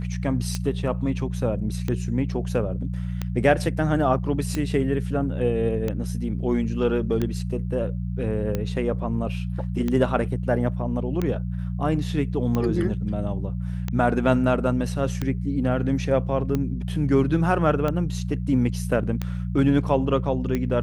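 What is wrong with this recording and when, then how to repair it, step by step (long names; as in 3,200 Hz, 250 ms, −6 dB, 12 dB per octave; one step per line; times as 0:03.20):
mains hum 60 Hz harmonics 3 −28 dBFS
scratch tick 45 rpm −13 dBFS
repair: click removal
hum removal 60 Hz, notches 3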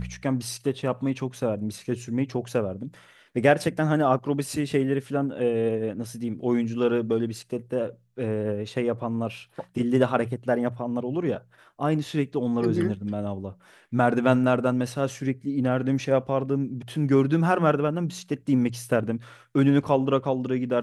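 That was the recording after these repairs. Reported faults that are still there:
none of them is left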